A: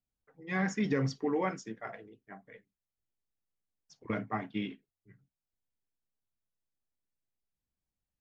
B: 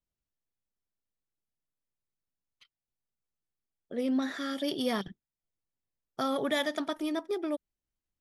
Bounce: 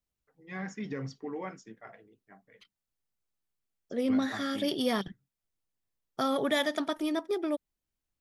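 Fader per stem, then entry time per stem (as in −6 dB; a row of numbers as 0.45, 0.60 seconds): −7.0, +1.5 decibels; 0.00, 0.00 seconds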